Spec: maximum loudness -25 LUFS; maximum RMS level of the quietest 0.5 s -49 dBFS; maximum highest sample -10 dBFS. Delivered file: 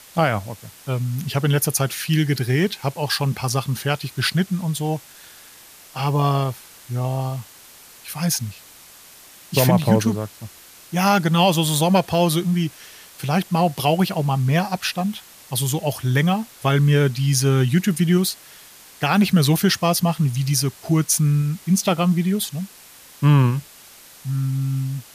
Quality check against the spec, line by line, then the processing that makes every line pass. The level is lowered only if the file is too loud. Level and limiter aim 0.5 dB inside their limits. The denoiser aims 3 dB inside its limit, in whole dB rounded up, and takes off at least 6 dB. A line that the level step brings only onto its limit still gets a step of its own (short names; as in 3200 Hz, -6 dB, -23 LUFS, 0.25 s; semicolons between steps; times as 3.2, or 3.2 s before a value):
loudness -20.5 LUFS: fail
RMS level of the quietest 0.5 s -46 dBFS: fail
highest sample -2.5 dBFS: fail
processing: gain -5 dB; limiter -10.5 dBFS